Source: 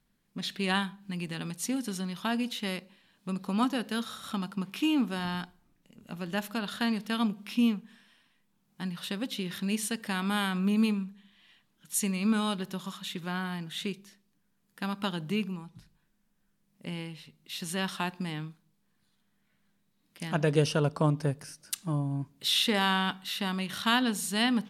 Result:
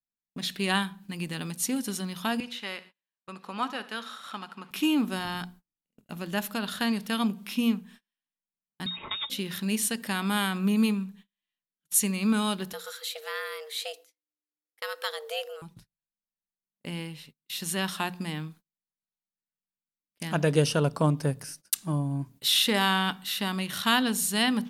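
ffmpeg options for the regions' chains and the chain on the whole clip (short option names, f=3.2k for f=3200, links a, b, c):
-filter_complex "[0:a]asettb=1/sr,asplit=3[a][b][c];[a]atrim=end=2.404[d];[b]atrim=start=2.4:end=4.71,asetpts=PTS-STARTPTS,afade=t=in:d=0.004:c=qsin,afade=t=out:st=2.306:d=0.004:c=qsin,bandpass=f=1.5k:t=q:w=0.61,aecho=1:1:72|144|216|288:0.141|0.0692|0.0339|0.0166,atrim=end_sample=101871[e];[c]atrim=start=4.706[f];[d][e]acrossfade=d=0.004:c1=hsin:c2=qsin[g];[g][f]acrossfade=d=0.004:c1=qsin:c2=hsin,asettb=1/sr,asplit=3[h][i][j];[h]atrim=end=8.864[k];[i]atrim=start=8.86:end=9.3,asetpts=PTS-STARTPTS,afade=t=in:d=0.004:c=qsin,afade=t=out:st=0.436:d=0.004:c=qsin,equalizer=f=250:w=1.9:g=-8.5,aecho=1:1:4.3:0.45,atrim=end_sample=19404,lowpass=f=3.3k:t=q:w=0.5098,lowpass=f=3.3k:t=q:w=0.6013,lowpass=f=3.3k:t=q:w=0.9,lowpass=f=3.3k:t=q:w=2.563,afreqshift=-3900[l];[j]atrim=start=9.296[m];[k][l]acrossfade=d=0.004:c1=hsin:c2=qsin[n];[n][m]acrossfade=d=0.004:c1=qsin:c2=hsin,asettb=1/sr,asplit=3[o][p][q];[o]atrim=end=12.734[r];[p]atrim=start=12.73:end=15.62,asetpts=PTS-STARTPTS,afade=t=in:d=0.004:c=qsin,afade=t=out:st=2.886:d=0.004:c=qsin,equalizer=f=290:t=o:w=1.9:g=-9.5,asoftclip=type=hard:threshold=-19dB,afreqshift=300[s];[q]atrim=start=15.616[t];[r][s]acrossfade=d=0.004:c1=hsin:c2=qsin[u];[u][t]acrossfade=d=0.004:c1=qsin:c2=hsin,bandreject=f=60:t=h:w=6,bandreject=f=120:t=h:w=6,bandreject=f=180:t=h:w=6,bandreject=f=240:t=h:w=6,agate=range=-33dB:threshold=-51dB:ratio=16:detection=peak,highshelf=f=9.9k:g=10.5,volume=2dB"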